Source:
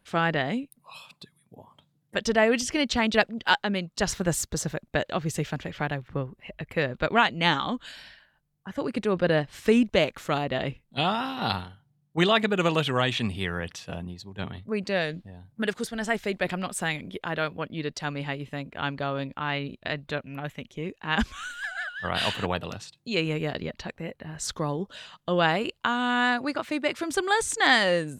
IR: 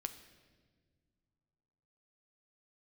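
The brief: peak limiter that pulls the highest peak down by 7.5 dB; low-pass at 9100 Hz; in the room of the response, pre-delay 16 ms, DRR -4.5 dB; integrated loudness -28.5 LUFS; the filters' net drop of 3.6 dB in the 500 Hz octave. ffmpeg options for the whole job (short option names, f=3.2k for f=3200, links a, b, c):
-filter_complex "[0:a]lowpass=9.1k,equalizer=f=500:t=o:g=-4.5,alimiter=limit=-14.5dB:level=0:latency=1,asplit=2[a][b];[1:a]atrim=start_sample=2205,adelay=16[c];[b][c]afir=irnorm=-1:irlink=0,volume=6.5dB[d];[a][d]amix=inputs=2:normalize=0,volume=-4.5dB"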